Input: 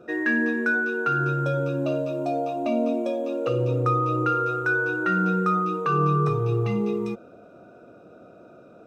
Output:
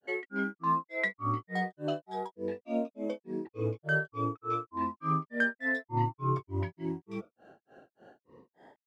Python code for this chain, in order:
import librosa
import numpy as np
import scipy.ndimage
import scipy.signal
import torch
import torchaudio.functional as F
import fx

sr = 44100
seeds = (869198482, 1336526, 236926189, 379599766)

y = fx.peak_eq(x, sr, hz=2100.0, db=3.5, octaves=2.5)
y = fx.notch(y, sr, hz=4400.0, q=14.0)
y = fx.granulator(y, sr, seeds[0], grain_ms=260.0, per_s=3.4, spray_ms=100.0, spread_st=7)
y = F.gain(torch.from_numpy(y), -6.0).numpy()